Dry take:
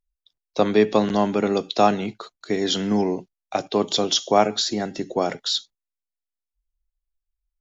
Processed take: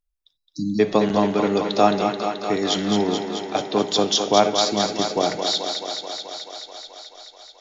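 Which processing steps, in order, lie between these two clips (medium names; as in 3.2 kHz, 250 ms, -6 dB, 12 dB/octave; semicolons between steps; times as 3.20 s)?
simulated room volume 1900 m³, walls mixed, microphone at 0.45 m; spectral selection erased 0.36–0.80 s, 320–3900 Hz; thinning echo 216 ms, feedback 79%, high-pass 220 Hz, level -6 dB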